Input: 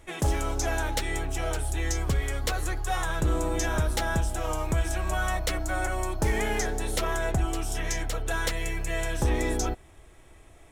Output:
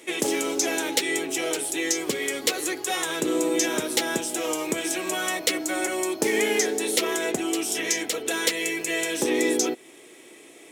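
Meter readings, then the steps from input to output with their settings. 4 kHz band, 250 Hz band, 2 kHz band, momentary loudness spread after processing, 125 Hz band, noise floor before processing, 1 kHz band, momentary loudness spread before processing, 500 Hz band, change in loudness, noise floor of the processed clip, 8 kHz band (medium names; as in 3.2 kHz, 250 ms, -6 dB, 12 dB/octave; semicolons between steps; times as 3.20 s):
+9.0 dB, +7.0 dB, +4.5 dB, 4 LU, -17.0 dB, -52 dBFS, -0.5 dB, 4 LU, +6.5 dB, +4.5 dB, -49 dBFS, +9.0 dB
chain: high-pass 260 Hz 24 dB/octave; high-order bell 1 kHz -10 dB; in parallel at -2 dB: compression, threshold -41 dBFS, peak gain reduction 14 dB; on the sum: trim +7 dB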